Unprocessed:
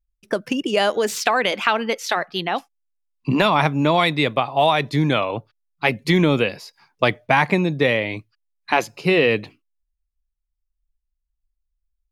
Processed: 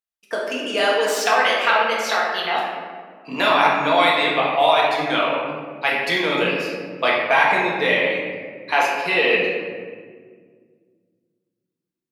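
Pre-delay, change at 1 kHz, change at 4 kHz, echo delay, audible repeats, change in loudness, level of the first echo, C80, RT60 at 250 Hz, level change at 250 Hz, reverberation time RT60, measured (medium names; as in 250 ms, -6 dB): 4 ms, +3.0 dB, +2.0 dB, no echo, no echo, +1.0 dB, no echo, 2.5 dB, 2.8 s, -6.5 dB, 1.8 s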